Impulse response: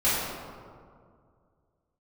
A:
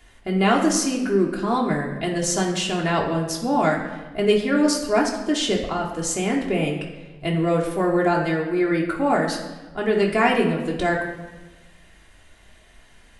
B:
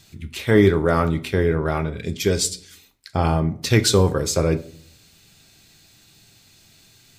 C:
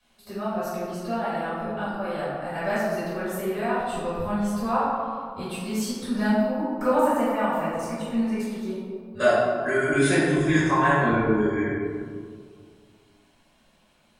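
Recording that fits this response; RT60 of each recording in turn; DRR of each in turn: C; 1.2, 0.55, 2.1 s; -2.0, 9.0, -13.5 dB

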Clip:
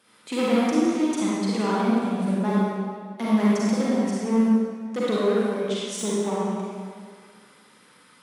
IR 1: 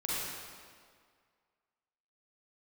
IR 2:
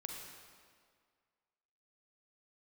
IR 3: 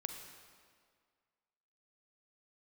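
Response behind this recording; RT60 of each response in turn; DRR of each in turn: 1; 1.9, 1.9, 1.9 s; -8.0, 0.5, 4.5 dB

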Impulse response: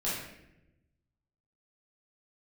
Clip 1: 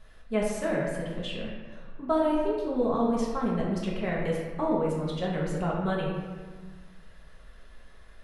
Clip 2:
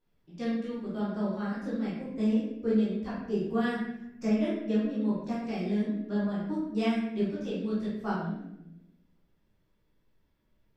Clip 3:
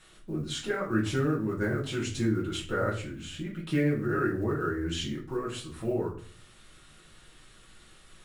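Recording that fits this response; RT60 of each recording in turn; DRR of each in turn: 2; 1.4, 0.90, 0.45 s; -5.0, -9.5, -5.0 dB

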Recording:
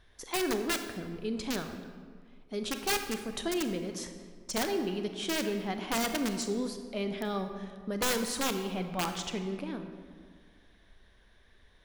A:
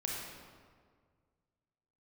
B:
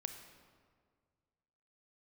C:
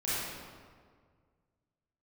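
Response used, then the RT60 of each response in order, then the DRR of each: B; 1.8, 1.9, 1.8 s; -3.0, 6.5, -11.5 dB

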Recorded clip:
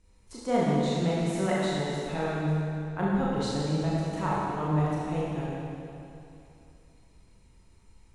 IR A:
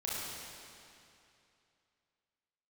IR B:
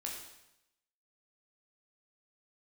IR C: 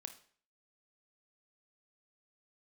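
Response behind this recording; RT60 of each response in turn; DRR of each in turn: A; 2.7, 0.85, 0.50 s; -7.5, -2.0, 7.5 dB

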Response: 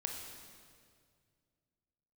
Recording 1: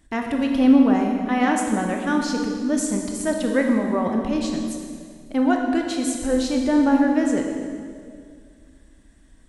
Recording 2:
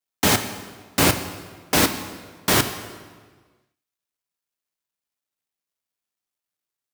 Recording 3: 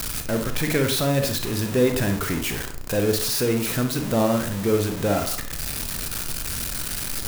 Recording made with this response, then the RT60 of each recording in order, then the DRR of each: 1; 2.1, 1.5, 0.55 s; 1.5, 8.0, 5.0 dB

